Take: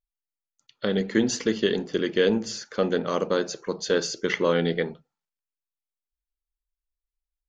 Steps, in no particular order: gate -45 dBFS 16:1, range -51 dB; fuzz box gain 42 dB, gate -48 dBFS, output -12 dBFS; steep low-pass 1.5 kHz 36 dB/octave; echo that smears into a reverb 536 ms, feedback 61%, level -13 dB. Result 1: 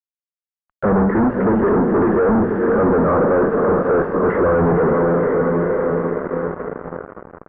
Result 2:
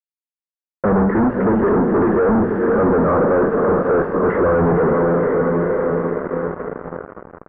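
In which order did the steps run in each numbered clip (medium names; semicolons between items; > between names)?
echo that smears into a reverb > fuzz box > steep low-pass > gate; gate > echo that smears into a reverb > fuzz box > steep low-pass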